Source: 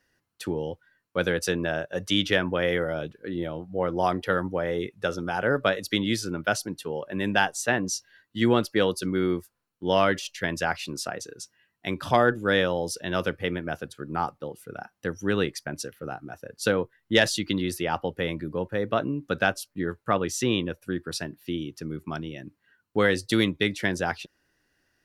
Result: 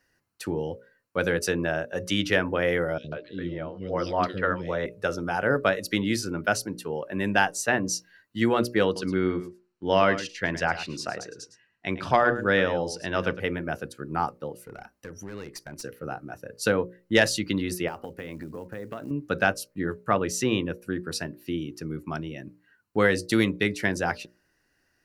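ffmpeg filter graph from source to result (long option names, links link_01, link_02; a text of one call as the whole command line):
ffmpeg -i in.wav -filter_complex "[0:a]asettb=1/sr,asplit=3[link_01][link_02][link_03];[link_01]atrim=end=2.984[link_04];[link_02]atrim=start=2.98:end=4.86,asetpts=PTS-STARTPTS,afade=type=in:duration=0.004:curve=qsin,afade=type=out:start_time=1.876:duration=0.004:curve=qsin,lowpass=frequency=4500:width_type=q:width=2.2,bandreject=frequency=800:width=6.4,acrossover=split=370|2800[link_05][link_06][link_07];[link_05]adelay=60[link_08];[link_06]adelay=140[link_09];[link_08][link_09][link_07]amix=inputs=3:normalize=0,atrim=end_sample=82908[link_10];[link_03]atrim=start=4.856[link_11];[link_04][link_10]acrossfade=duration=0.004:curve1=hsin:curve2=qsin[link_12];[link_12][link_11]acrossfade=duration=0.004:curve1=qsin:curve2=hsin,asettb=1/sr,asplit=3[link_13][link_14][link_15];[link_13]atrim=end=8.854[link_16];[link_14]atrim=start=8.85:end=13.4,asetpts=PTS-STARTPTS,afade=type=in:duration=0.004:curve=qsin,afade=type=out:start_time=4.546:duration=0.004:curve=qsin,lowpass=3900,aemphasis=mode=production:type=cd,aecho=1:1:108:0.224,atrim=end_sample=200655[link_17];[link_15]atrim=start=13.396[link_18];[link_16][link_17]acrossfade=duration=0.004:curve1=hsin:curve2=qsin[link_19];[link_19][link_18]acrossfade=duration=0.004:curve1=qsin:curve2=hsin,asettb=1/sr,asplit=3[link_20][link_21][link_22];[link_20]atrim=end=14.654[link_23];[link_21]atrim=start=14.65:end=15.84,asetpts=PTS-STARTPTS,afade=type=in:duration=0.004:curve=qsin,afade=type=out:start_time=1.186:duration=0.004:curve=qsin,acompressor=threshold=-35dB:ratio=4:attack=3.2:release=140:knee=1:detection=peak,aeval=exprs='clip(val(0),-1,0.0141)':channel_layout=same[link_24];[link_22]atrim=start=15.836[link_25];[link_23][link_24]acrossfade=duration=0.004:curve1=hsin:curve2=qsin[link_26];[link_26][link_25]acrossfade=duration=0.004:curve1=qsin:curve2=hsin,asettb=1/sr,asplit=3[link_27][link_28][link_29];[link_27]atrim=end=17.884[link_30];[link_28]atrim=start=17.88:end=19.11,asetpts=PTS-STARTPTS,afade=type=in:duration=0.004:curve=qsin,afade=type=out:start_time=1.226:duration=0.004:curve=qsin,equalizer=frequency=250:width=5.6:gain=5,acompressor=threshold=-33dB:ratio=6:attack=3.2:release=140:knee=1:detection=peak,acrusher=bits=7:mode=log:mix=0:aa=0.000001[link_31];[link_29]atrim=start=19.106[link_32];[link_30][link_31]acrossfade=duration=0.004:curve1=hsin:curve2=qsin[link_33];[link_33][link_32]acrossfade=duration=0.004:curve1=qsin:curve2=hsin,equalizer=frequency=3400:width=6.1:gain=-8.5,bandreject=frequency=60:width_type=h:width=6,bandreject=frequency=120:width_type=h:width=6,bandreject=frequency=180:width_type=h:width=6,bandreject=frequency=240:width_type=h:width=6,bandreject=frequency=300:width_type=h:width=6,bandreject=frequency=360:width_type=h:width=6,bandreject=frequency=420:width_type=h:width=6,bandreject=frequency=480:width_type=h:width=6,bandreject=frequency=540:width_type=h:width=6,bandreject=frequency=600:width_type=h:width=6,volume=1dB" out.wav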